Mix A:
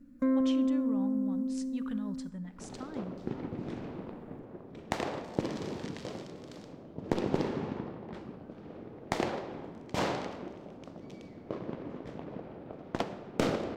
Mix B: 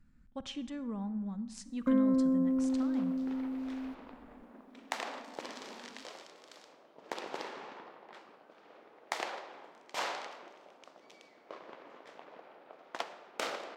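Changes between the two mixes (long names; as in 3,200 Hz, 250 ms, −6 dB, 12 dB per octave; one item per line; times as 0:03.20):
first sound: entry +1.65 s
second sound: add high-pass filter 840 Hz 12 dB per octave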